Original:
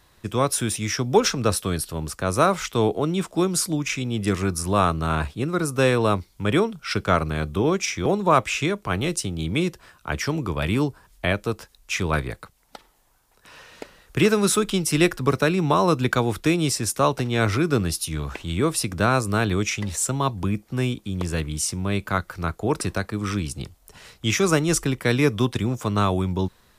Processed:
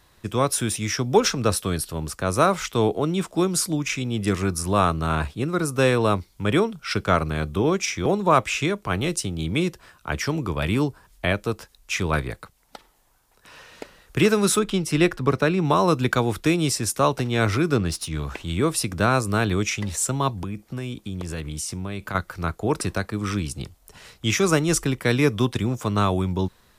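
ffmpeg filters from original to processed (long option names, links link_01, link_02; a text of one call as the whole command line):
ffmpeg -i in.wav -filter_complex "[0:a]asettb=1/sr,asplit=3[link_01][link_02][link_03];[link_01]atrim=end=14.594[link_04];[link_02]atrim=start=14.59:end=15.65,asetpts=PTS-STARTPTS,afade=type=in:duration=0.004:curve=qsin,afade=type=out:start_time=1.056:duration=0.004:curve=qsin,highshelf=frequency=5500:gain=-10[link_05];[link_03]atrim=start=15.646[link_06];[link_04][link_05]acrossfade=duration=0.004:curve1=hsin:curve2=qsin[link_07];[link_07][link_06]acrossfade=duration=0.004:curve1=qsin:curve2=hsin,asettb=1/sr,asplit=3[link_08][link_09][link_10];[link_08]atrim=end=17.744[link_11];[link_09]atrim=start=17.74:end=18.15,asetpts=PTS-STARTPTS,afade=type=in:duration=0.004:curve=qsin,afade=type=out:start_time=0.406:duration=0.004:curve=qsin,adynamicsmooth=sensitivity=7.5:basefreq=5400[link_12];[link_10]atrim=start=18.146[link_13];[link_11][link_12]acrossfade=duration=0.004:curve1=hsin:curve2=qsin[link_14];[link_14][link_13]acrossfade=duration=0.004:curve1=qsin:curve2=hsin,asettb=1/sr,asplit=3[link_15][link_16][link_17];[link_15]atrim=end=20.374[link_18];[link_16]atrim=start=20.37:end=22.15,asetpts=PTS-STARTPTS,afade=type=in:duration=0.004:curve=qsin,afade=type=out:start_time=1.776:duration=0.004:curve=qsin,acompressor=threshold=-26dB:ratio=6:attack=3.2:release=140:knee=1:detection=peak[link_19];[link_17]atrim=start=22.146[link_20];[link_18][link_19]acrossfade=duration=0.004:curve1=hsin:curve2=qsin[link_21];[link_21][link_20]acrossfade=duration=0.004:curve1=qsin:curve2=hsin" out.wav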